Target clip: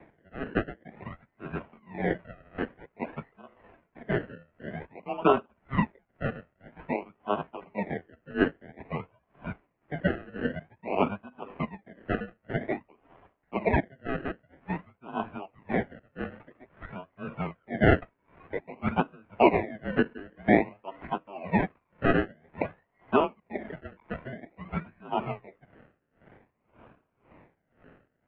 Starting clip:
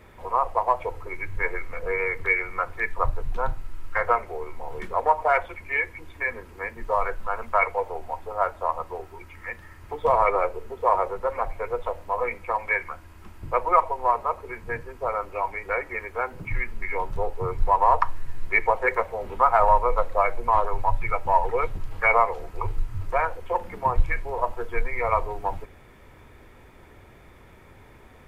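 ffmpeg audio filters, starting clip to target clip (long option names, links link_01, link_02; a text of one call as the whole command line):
ffmpeg -i in.wav -af "aresample=11025,volume=11.5dB,asoftclip=hard,volume=-11.5dB,aresample=44100,acrusher=samples=27:mix=1:aa=0.000001:lfo=1:lforange=16.2:lforate=0.51,highpass=frequency=410:width_type=q:width=0.5412,highpass=frequency=410:width_type=q:width=1.307,lowpass=frequency=2700:width_type=q:width=0.5176,lowpass=frequency=2700:width_type=q:width=0.7071,lowpass=frequency=2700:width_type=q:width=1.932,afreqshift=-290,aeval=exprs='val(0)*pow(10,-25*(0.5-0.5*cos(2*PI*1.9*n/s))/20)':channel_layout=same,volume=3dB" out.wav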